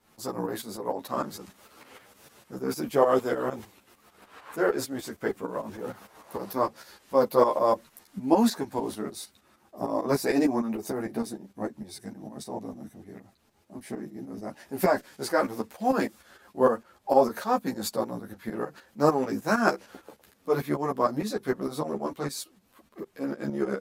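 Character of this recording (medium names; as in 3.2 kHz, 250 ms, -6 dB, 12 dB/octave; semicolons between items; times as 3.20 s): tremolo saw up 6.6 Hz, depth 75%; a shimmering, thickened sound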